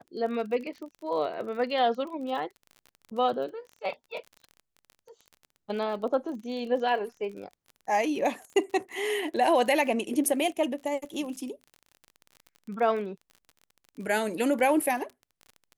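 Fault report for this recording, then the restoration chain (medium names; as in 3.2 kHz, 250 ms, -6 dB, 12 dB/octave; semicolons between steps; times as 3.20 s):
crackle 33 per s -37 dBFS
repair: de-click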